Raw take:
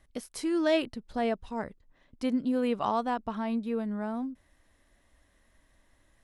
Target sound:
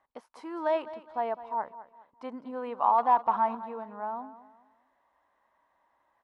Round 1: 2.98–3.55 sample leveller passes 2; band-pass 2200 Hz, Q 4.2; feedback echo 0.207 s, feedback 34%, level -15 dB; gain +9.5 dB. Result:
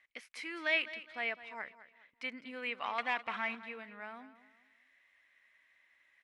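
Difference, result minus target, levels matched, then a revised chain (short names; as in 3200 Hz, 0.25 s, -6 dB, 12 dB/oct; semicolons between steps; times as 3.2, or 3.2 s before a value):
2000 Hz band +18.5 dB
2.98–3.55 sample leveller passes 2; band-pass 930 Hz, Q 4.2; feedback echo 0.207 s, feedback 34%, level -15 dB; gain +9.5 dB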